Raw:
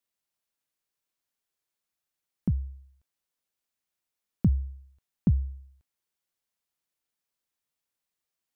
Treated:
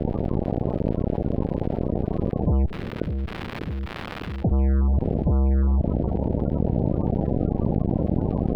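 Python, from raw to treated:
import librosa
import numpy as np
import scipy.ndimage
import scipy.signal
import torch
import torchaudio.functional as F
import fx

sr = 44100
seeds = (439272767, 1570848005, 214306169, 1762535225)

y = fx.bin_compress(x, sr, power=0.4)
y = fx.highpass(y, sr, hz=350.0, slope=12, at=(2.64, 4.51), fade=0.02)
y = fx.rider(y, sr, range_db=10, speed_s=2.0)
y = fx.fuzz(y, sr, gain_db=45.0, gate_db=-49.0)
y = fx.spec_topn(y, sr, count=32)
y = fx.dmg_crackle(y, sr, seeds[0], per_s=220.0, level_db=-39.0)
y = fx.air_absorb(y, sr, metres=420.0)
y = fx.echo_bbd(y, sr, ms=599, stages=2048, feedback_pct=44, wet_db=-23.5)
y = fx.env_flatten(y, sr, amount_pct=70)
y = F.gain(torch.from_numpy(y), -5.0).numpy()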